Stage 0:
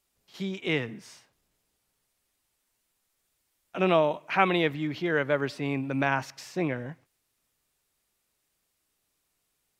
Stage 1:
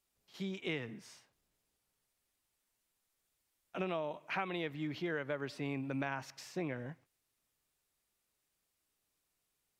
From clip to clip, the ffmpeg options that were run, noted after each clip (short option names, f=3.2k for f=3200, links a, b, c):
-af "acompressor=threshold=-27dB:ratio=6,volume=-6.5dB"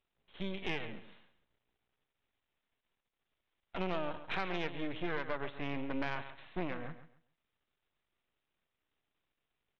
-af "aresample=8000,aeval=exprs='max(val(0),0)':c=same,aresample=44100,aecho=1:1:136|272|408:0.224|0.0515|0.0118,asoftclip=type=tanh:threshold=-26.5dB,volume=5.5dB"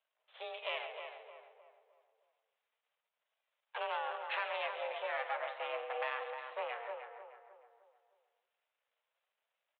-filter_complex "[0:a]asplit=2[a][b];[b]adelay=308,lowpass=f=1.6k:p=1,volume=-6dB,asplit=2[c][d];[d]adelay=308,lowpass=f=1.6k:p=1,volume=0.43,asplit=2[e][f];[f]adelay=308,lowpass=f=1.6k:p=1,volume=0.43,asplit=2[g][h];[h]adelay=308,lowpass=f=1.6k:p=1,volume=0.43,asplit=2[i][j];[j]adelay=308,lowpass=f=1.6k:p=1,volume=0.43[k];[a][c][e][g][i][k]amix=inputs=6:normalize=0,flanger=delay=2.2:depth=8.5:regen=75:speed=0.3:shape=sinusoidal,highpass=f=270:t=q:w=0.5412,highpass=f=270:t=q:w=1.307,lowpass=f=3.3k:t=q:w=0.5176,lowpass=f=3.3k:t=q:w=0.7071,lowpass=f=3.3k:t=q:w=1.932,afreqshift=220,volume=4.5dB"